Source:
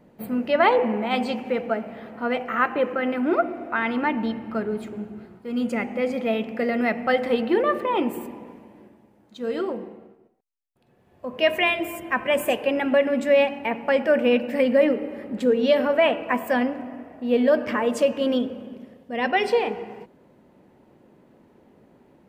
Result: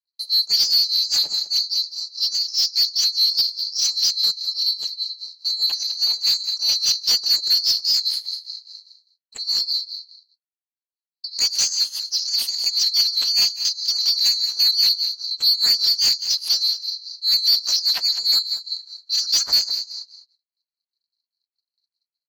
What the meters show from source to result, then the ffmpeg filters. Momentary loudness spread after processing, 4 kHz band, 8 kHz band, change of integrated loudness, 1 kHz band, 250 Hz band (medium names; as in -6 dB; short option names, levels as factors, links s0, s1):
10 LU, +21.0 dB, no reading, +5.0 dB, under -20 dB, under -30 dB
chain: -filter_complex "[0:a]afftfilt=real='real(if(lt(b,736),b+184*(1-2*mod(floor(b/184),2)),b),0)':imag='imag(if(lt(b,736),b+184*(1-2*mod(floor(b/184),2)),b),0)':win_size=2048:overlap=0.75,bandreject=f=650:w=21,agate=range=0.00316:threshold=0.00355:ratio=16:detection=peak,adynamicequalizer=threshold=0.00126:dfrequency=140:dqfactor=0.82:tfrequency=140:tqfactor=0.82:attack=5:release=100:ratio=0.375:range=2:mode=boostabove:tftype=bell,aeval=exprs='0.531*(cos(1*acos(clip(val(0)/0.531,-1,1)))-cos(1*PI/2))+0.00531*(cos(2*acos(clip(val(0)/0.531,-1,1)))-cos(2*PI/2))+0.00596*(cos(6*acos(clip(val(0)/0.531,-1,1)))-cos(6*PI/2))':c=same,tremolo=f=4.9:d=0.89,asplit=2[s0][s1];[s1]highpass=f=720:p=1,volume=10,asoftclip=type=tanh:threshold=0.473[s2];[s0][s2]amix=inputs=2:normalize=0,lowpass=f=4300:p=1,volume=0.501,aecho=1:1:203:0.2,aeval=exprs='val(0)*sin(2*PI*130*n/s)':c=same,volume=1.33"